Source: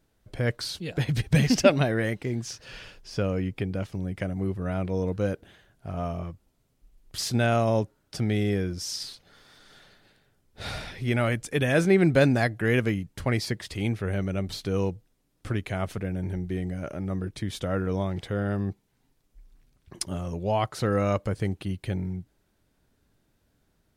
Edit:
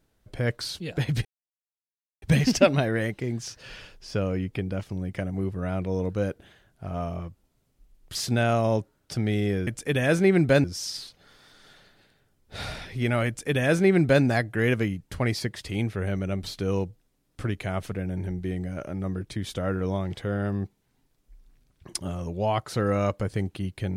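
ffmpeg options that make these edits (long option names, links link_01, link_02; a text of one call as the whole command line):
ffmpeg -i in.wav -filter_complex "[0:a]asplit=4[link_01][link_02][link_03][link_04];[link_01]atrim=end=1.25,asetpts=PTS-STARTPTS,afade=type=out:start_time=1.246:duration=0.004:curve=hsin,apad=pad_dur=0.97[link_05];[link_02]atrim=start=1.25:end=8.702,asetpts=PTS-STARTPTS,afade=type=in:duration=0.004:curve=hsin[link_06];[link_03]atrim=start=11.328:end=12.302[link_07];[link_04]atrim=start=8.698[link_08];[link_05][link_06]concat=n=2:v=0:a=1[link_09];[link_09][link_07]acrossfade=duration=0.004:curve1=hsin:curve2=hsin[link_10];[link_10][link_08]acrossfade=duration=0.004:curve1=hsin:curve2=hsin" out.wav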